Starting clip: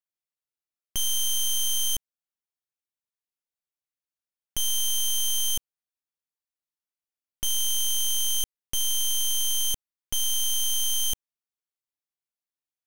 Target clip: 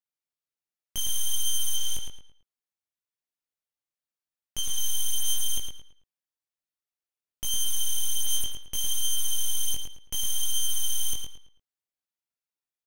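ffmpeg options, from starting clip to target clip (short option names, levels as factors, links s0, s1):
-filter_complex "[0:a]asettb=1/sr,asplit=3[s0][s1][s2];[s0]atrim=end=1.764[s3];[s1]atrim=start=1.76:end=4.78,asetpts=PTS-STARTPTS,afade=t=in:d=0.004:c=qsin,afade=t=out:st=3.016:d=0.004:c=qsin,acrossover=split=9800[s4][s5];[s5]acompressor=threshold=0.0141:ratio=4:attack=1:release=60[s6];[s4][s6]amix=inputs=2:normalize=0[s7];[s2]atrim=start=4.776[s8];[s3][s7]acrossfade=d=0.004:c1=hsin:c2=qsin[s9];[s9][s8]acrossfade=d=0.004:c1=qsin:c2=hsin,flanger=delay=18.5:depth=2.9:speed=0.66,asplit=2[s10][s11];[s11]adelay=110,lowpass=f=4500:p=1,volume=0.631,asplit=2[s12][s13];[s13]adelay=110,lowpass=f=4500:p=1,volume=0.35,asplit=2[s14][s15];[s15]adelay=110,lowpass=f=4500:p=1,volume=0.35,asplit=2[s16][s17];[s17]adelay=110,lowpass=f=4500:p=1,volume=0.35[s18];[s10][s12][s14][s16][s18]amix=inputs=5:normalize=0"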